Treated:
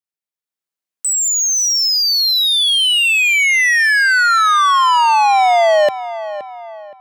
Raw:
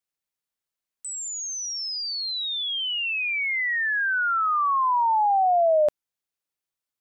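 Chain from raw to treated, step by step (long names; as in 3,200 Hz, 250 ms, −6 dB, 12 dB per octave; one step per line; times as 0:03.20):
leveller curve on the samples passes 3
high-pass filter 130 Hz 24 dB per octave
feedback echo with a low-pass in the loop 521 ms, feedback 48%, low-pass 2,700 Hz, level −13 dB
automatic gain control gain up to 6 dB
0:01.97–0:02.55: low-shelf EQ 360 Hz −9.5 dB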